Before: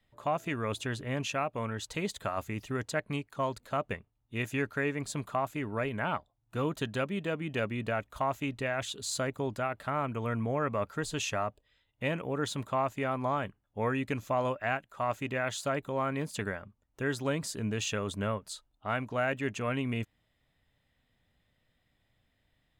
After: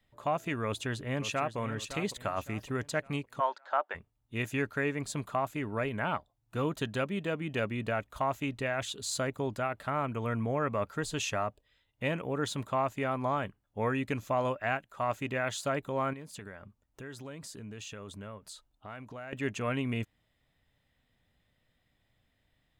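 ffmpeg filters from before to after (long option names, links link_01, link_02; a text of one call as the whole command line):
ffmpeg -i in.wav -filter_complex "[0:a]asplit=2[link_01][link_02];[link_02]afade=type=in:start_time=0.65:duration=0.01,afade=type=out:start_time=1.57:duration=0.01,aecho=0:1:560|1120|1680|2240:0.281838|0.112735|0.0450941|0.0180377[link_03];[link_01][link_03]amix=inputs=2:normalize=0,asplit=3[link_04][link_05][link_06];[link_04]afade=type=out:start_time=3.39:duration=0.02[link_07];[link_05]highpass=frequency=430:width=0.5412,highpass=frequency=430:width=1.3066,equalizer=frequency=450:width_type=q:width=4:gain=-7,equalizer=frequency=860:width_type=q:width=4:gain=9,equalizer=frequency=1500:width_type=q:width=4:gain=8,equalizer=frequency=2500:width_type=q:width=4:gain=-8,equalizer=frequency=4100:width_type=q:width=4:gain=-4,lowpass=frequency=4900:width=0.5412,lowpass=frequency=4900:width=1.3066,afade=type=in:start_time=3.39:duration=0.02,afade=type=out:start_time=3.94:duration=0.02[link_08];[link_06]afade=type=in:start_time=3.94:duration=0.02[link_09];[link_07][link_08][link_09]amix=inputs=3:normalize=0,asettb=1/sr,asplit=3[link_10][link_11][link_12];[link_10]atrim=end=16.134[link_13];[link_11]atrim=start=16.13:end=19.33,asetpts=PTS-STARTPTS,afade=type=in:duration=0.004:curve=qsin,afade=type=out:start_time=3.196:duration=0.004:curve=qsin,acompressor=threshold=-44dB:ratio=3:attack=3.2:release=140:knee=1:detection=peak[link_14];[link_12]atrim=start=19.326[link_15];[link_13][link_14]acrossfade=duration=0.004:curve1=hsin:curve2=qsin[link_16];[link_16][link_15]acrossfade=duration=0.004:curve1=qsin:curve2=hsin" out.wav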